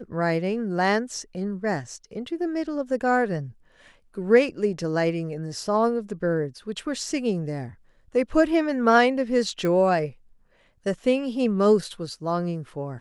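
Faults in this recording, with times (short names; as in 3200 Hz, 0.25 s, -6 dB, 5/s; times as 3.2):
9.65 pop -16 dBFS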